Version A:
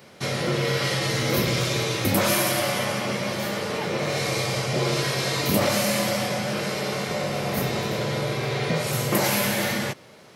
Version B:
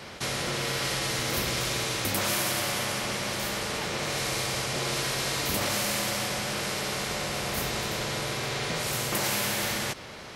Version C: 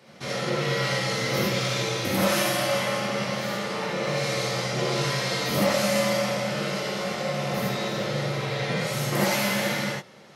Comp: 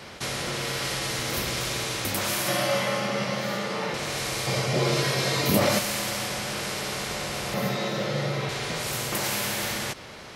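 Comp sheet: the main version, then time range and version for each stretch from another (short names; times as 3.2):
B
2.48–3.94 from C
4.47–5.79 from A
7.54–8.49 from C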